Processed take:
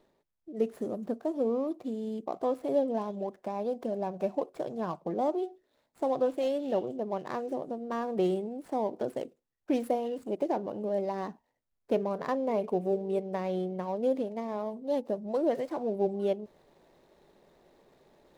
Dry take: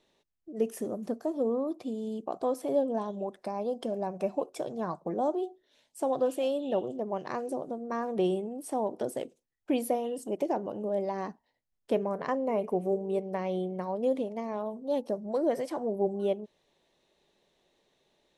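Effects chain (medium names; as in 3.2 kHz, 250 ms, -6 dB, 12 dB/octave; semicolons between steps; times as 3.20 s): median filter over 15 samples; reverse; upward compressor, threshold -50 dBFS; reverse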